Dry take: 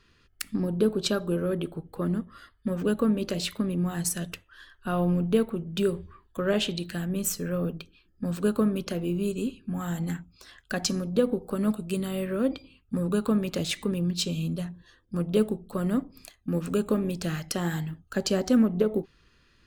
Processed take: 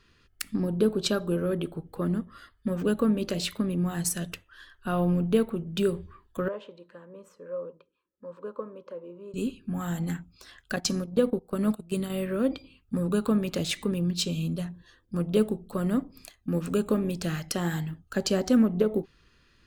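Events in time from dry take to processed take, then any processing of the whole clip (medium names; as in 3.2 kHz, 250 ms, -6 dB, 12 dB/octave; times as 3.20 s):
6.48–9.34 s: two resonant band-passes 730 Hz, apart 0.86 oct
10.76–12.10 s: gate -32 dBFS, range -13 dB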